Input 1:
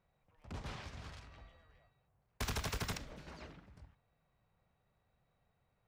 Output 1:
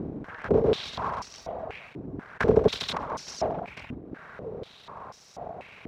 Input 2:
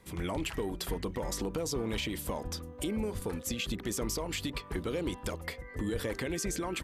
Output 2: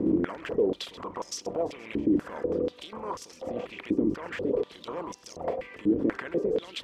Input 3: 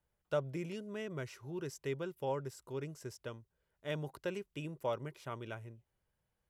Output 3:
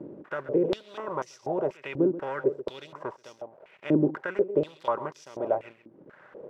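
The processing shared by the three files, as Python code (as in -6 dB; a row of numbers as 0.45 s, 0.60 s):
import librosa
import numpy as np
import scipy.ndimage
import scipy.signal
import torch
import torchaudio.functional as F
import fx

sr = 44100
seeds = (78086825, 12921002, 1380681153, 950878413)

p1 = fx.bin_compress(x, sr, power=0.4)
p2 = fx.dereverb_blind(p1, sr, rt60_s=1.1)
p3 = fx.tilt_shelf(p2, sr, db=10.0, hz=880.0)
p4 = fx.over_compress(p3, sr, threshold_db=-27.0, ratio=-0.5)
p5 = p3 + (p4 * librosa.db_to_amplitude(2.5))
p6 = fx.quant_float(p5, sr, bits=6)
p7 = np.sign(p6) * np.maximum(np.abs(p6) - 10.0 ** (-50.5 / 20.0), 0.0)
p8 = p7 + 10.0 ** (-14.0 / 20.0) * np.pad(p7, (int(132 * sr / 1000.0), 0))[:len(p7)]
p9 = fx.filter_held_bandpass(p8, sr, hz=4.1, low_hz=300.0, high_hz=5600.0)
y = p9 * 10.0 ** (-30 / 20.0) / np.sqrt(np.mean(np.square(p9)))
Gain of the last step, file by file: +18.5 dB, +3.0 dB, +9.0 dB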